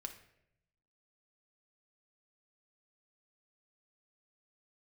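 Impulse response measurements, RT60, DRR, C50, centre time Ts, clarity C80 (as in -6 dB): 0.80 s, 4.5 dB, 10.5 dB, 12 ms, 13.5 dB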